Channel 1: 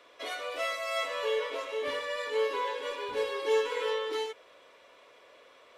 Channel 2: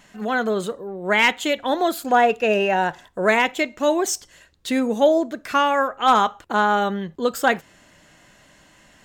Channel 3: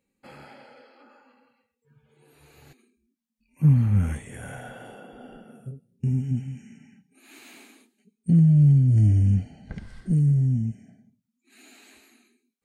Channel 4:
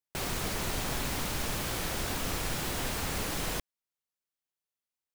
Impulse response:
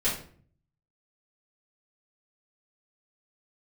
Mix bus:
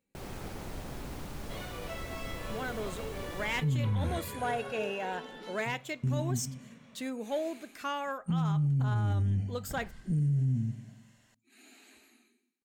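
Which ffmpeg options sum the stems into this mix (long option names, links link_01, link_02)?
-filter_complex "[0:a]acompressor=threshold=-34dB:ratio=6,flanger=delay=17:depth=6.2:speed=0.49,adelay=1300,volume=-3.5dB[link_01];[1:a]highshelf=frequency=4500:gain=7,asoftclip=type=tanh:threshold=-6.5dB,adelay=2300,volume=-16dB[link_02];[2:a]volume=-5.5dB,asplit=2[link_03][link_04];[link_04]volume=-15dB[link_05];[3:a]tiltshelf=frequency=1100:gain=5.5,volume=-11dB,asplit=2[link_06][link_07];[link_07]volume=-11dB[link_08];[link_05][link_08]amix=inputs=2:normalize=0,aecho=0:1:91|182|273|364|455|546|637|728:1|0.54|0.292|0.157|0.085|0.0459|0.0248|0.0134[link_09];[link_01][link_02][link_03][link_06][link_09]amix=inputs=5:normalize=0,alimiter=limit=-23.5dB:level=0:latency=1:release=11"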